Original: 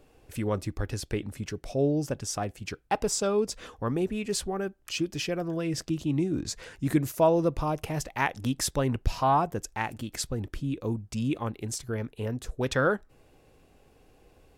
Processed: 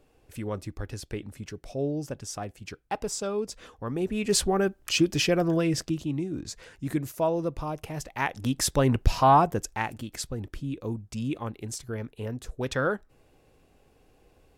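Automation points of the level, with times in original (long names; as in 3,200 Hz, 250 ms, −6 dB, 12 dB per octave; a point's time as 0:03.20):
0:03.87 −4 dB
0:04.37 +7 dB
0:05.54 +7 dB
0:06.21 −4 dB
0:07.94 −4 dB
0:08.88 +5 dB
0:09.44 +5 dB
0:10.13 −2 dB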